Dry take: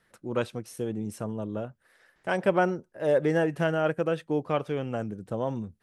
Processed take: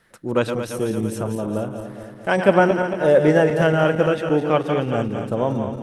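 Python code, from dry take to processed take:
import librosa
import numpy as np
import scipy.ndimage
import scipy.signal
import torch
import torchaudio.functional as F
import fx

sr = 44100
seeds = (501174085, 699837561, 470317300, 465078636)

y = fx.reverse_delay_fb(x, sr, ms=113, feedback_pct=76, wet_db=-7.5)
y = y * librosa.db_to_amplitude(8.0)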